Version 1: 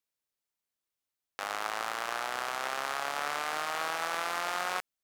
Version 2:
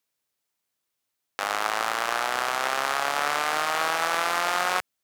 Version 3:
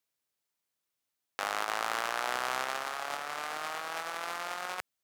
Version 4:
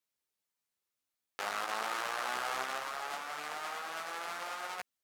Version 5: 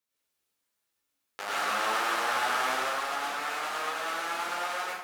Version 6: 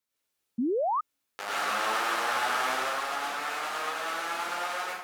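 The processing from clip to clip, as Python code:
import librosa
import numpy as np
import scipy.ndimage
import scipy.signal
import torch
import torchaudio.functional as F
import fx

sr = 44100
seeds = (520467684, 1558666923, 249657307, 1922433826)

y1 = scipy.signal.sosfilt(scipy.signal.butter(2, 68.0, 'highpass', fs=sr, output='sos'), x)
y1 = F.gain(torch.from_numpy(y1), 8.0).numpy()
y2 = fx.over_compress(y1, sr, threshold_db=-28.0, ratio=-0.5)
y2 = F.gain(torch.from_numpy(y2), -7.0).numpy()
y3 = fx.ensemble(y2, sr)
y4 = fx.rev_plate(y3, sr, seeds[0], rt60_s=0.8, hf_ratio=0.8, predelay_ms=85, drr_db=-7.0)
y5 = fx.spec_paint(y4, sr, seeds[1], shape='rise', start_s=0.58, length_s=0.43, low_hz=220.0, high_hz=1300.0, level_db=-27.0)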